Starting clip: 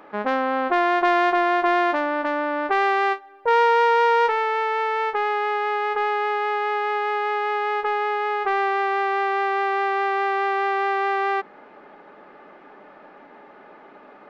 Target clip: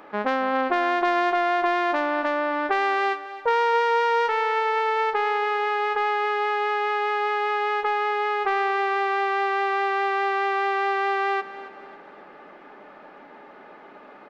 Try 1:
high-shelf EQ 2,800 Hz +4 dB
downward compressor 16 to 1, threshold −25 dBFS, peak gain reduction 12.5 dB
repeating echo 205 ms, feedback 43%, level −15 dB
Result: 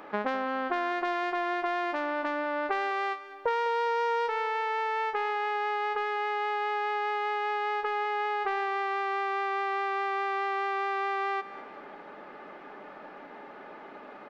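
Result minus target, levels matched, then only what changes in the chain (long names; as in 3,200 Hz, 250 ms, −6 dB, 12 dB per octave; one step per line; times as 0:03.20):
downward compressor: peak gain reduction +7.5 dB; echo 69 ms early
change: downward compressor 16 to 1, threshold −17 dBFS, peak gain reduction 5 dB
change: repeating echo 274 ms, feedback 43%, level −15 dB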